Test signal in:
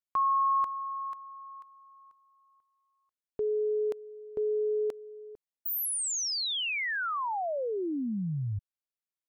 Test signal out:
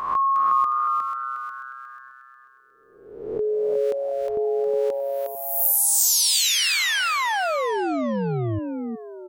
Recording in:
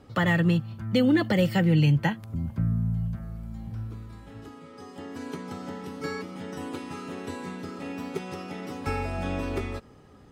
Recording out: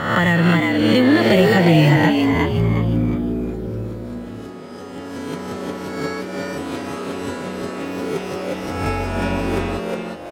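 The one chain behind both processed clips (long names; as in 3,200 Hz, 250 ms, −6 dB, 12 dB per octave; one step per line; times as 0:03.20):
peak hold with a rise ahead of every peak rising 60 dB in 0.94 s
echo with shifted repeats 360 ms, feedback 36%, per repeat +130 Hz, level −3.5 dB
level +5.5 dB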